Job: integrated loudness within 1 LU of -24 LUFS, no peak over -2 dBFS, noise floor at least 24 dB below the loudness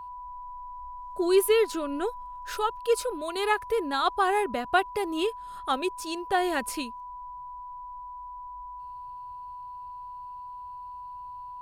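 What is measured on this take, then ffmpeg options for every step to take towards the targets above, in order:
steady tone 990 Hz; tone level -38 dBFS; loudness -27.5 LUFS; peak -10.0 dBFS; loudness target -24.0 LUFS
-> -af "bandreject=f=990:w=30"
-af "volume=3.5dB"

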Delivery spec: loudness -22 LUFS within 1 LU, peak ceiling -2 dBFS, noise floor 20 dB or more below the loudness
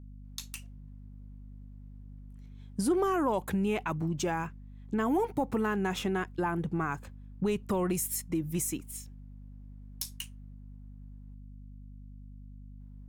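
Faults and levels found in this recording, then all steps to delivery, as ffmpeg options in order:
hum 50 Hz; harmonics up to 250 Hz; hum level -45 dBFS; loudness -32.0 LUFS; peak -17.5 dBFS; loudness target -22.0 LUFS
-> -af "bandreject=f=50:t=h:w=4,bandreject=f=100:t=h:w=4,bandreject=f=150:t=h:w=4,bandreject=f=200:t=h:w=4,bandreject=f=250:t=h:w=4"
-af "volume=10dB"

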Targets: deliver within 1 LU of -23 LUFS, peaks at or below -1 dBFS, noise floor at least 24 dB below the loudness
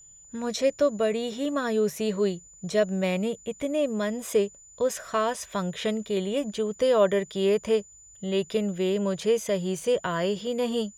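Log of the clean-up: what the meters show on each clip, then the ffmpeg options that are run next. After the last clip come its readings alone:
steady tone 7000 Hz; tone level -49 dBFS; loudness -27.0 LUFS; peak -10.5 dBFS; loudness target -23.0 LUFS
-> -af "bandreject=f=7k:w=30"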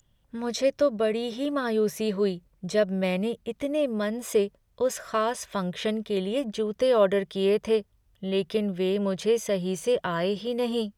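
steady tone none; loudness -27.0 LUFS; peak -10.5 dBFS; loudness target -23.0 LUFS
-> -af "volume=4dB"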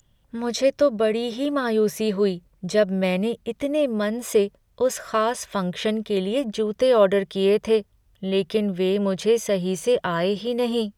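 loudness -23.0 LUFS; peak -6.5 dBFS; noise floor -62 dBFS

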